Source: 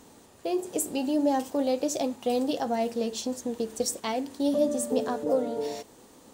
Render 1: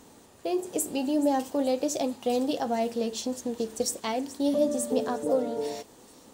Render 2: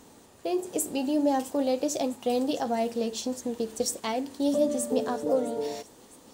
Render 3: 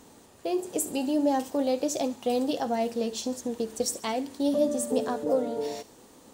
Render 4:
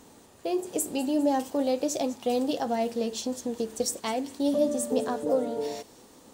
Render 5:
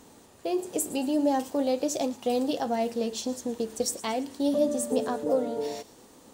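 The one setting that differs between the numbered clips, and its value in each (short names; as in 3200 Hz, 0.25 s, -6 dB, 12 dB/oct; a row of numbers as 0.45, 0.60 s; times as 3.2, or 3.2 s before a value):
thin delay, time: 428, 658, 70, 202, 113 ms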